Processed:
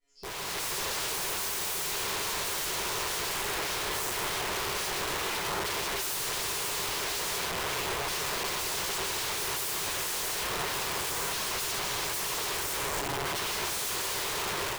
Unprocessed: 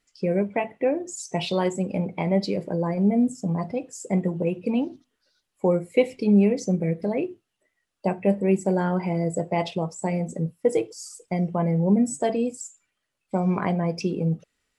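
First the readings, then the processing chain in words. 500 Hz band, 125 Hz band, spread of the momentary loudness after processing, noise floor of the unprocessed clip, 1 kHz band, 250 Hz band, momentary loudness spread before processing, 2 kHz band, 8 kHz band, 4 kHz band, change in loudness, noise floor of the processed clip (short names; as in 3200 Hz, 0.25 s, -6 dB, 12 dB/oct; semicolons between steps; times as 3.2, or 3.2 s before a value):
-13.0 dB, -18.0 dB, 1 LU, -80 dBFS, -1.0 dB, -21.5 dB, 9 LU, +6.0 dB, +9.0 dB, +11.0 dB, -5.0 dB, -33 dBFS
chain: shoebox room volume 120 m³, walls hard, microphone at 1.9 m; in parallel at -0.5 dB: compressor 8:1, threshold -25 dBFS, peak gain reduction 25 dB; on the sum: dynamic EQ 480 Hz, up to -7 dB, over -26 dBFS, Q 7.8; resonator 140 Hz, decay 0.82 s, harmonics all, mix 100%; on a send: delay with a stepping band-pass 0.557 s, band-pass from 2500 Hz, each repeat -0.7 oct, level -6.5 dB; on the sum: wrapped overs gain 35.5 dB; thirty-one-band EQ 250 Hz -11 dB, 400 Hz +8 dB, 1000 Hz +5 dB; AGC gain up to 7.5 dB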